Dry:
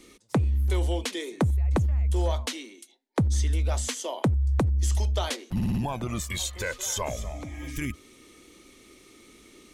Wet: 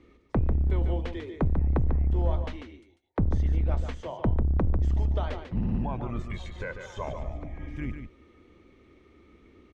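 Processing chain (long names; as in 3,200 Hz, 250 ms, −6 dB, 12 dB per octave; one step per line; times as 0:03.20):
sub-octave generator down 2 octaves, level 0 dB
low-pass filter 1,800 Hz 12 dB per octave
single-tap delay 145 ms −7.5 dB
level −3.5 dB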